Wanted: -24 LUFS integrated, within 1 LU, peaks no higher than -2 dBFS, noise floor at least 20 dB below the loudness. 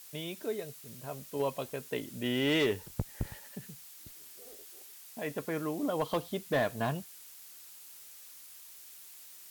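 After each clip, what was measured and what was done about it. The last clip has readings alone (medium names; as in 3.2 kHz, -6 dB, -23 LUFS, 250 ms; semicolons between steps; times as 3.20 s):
clipped samples 0.3%; clipping level -22.5 dBFS; noise floor -52 dBFS; noise floor target -55 dBFS; loudness -34.5 LUFS; peak level -22.5 dBFS; loudness target -24.0 LUFS
-> clip repair -22.5 dBFS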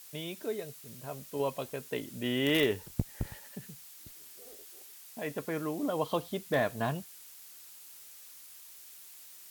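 clipped samples 0.0%; noise floor -52 dBFS; noise floor target -54 dBFS
-> noise print and reduce 6 dB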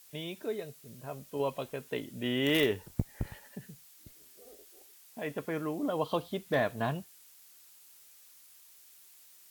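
noise floor -58 dBFS; loudness -34.0 LUFS; peak level -13.5 dBFS; loudness target -24.0 LUFS
-> trim +10 dB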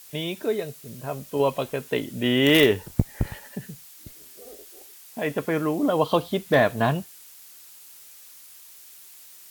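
loudness -24.0 LUFS; peak level -3.5 dBFS; noise floor -48 dBFS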